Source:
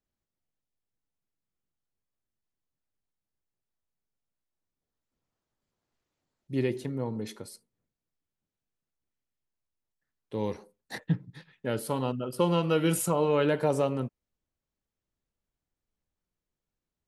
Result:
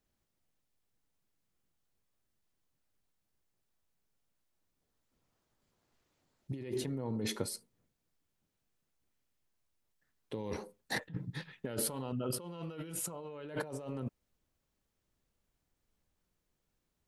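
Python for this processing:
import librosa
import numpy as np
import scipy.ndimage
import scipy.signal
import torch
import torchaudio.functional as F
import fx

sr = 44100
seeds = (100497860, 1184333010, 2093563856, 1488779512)

y = fx.over_compress(x, sr, threshold_db=-38.0, ratio=-1.0)
y = y * 10.0 ** (-2.0 / 20.0)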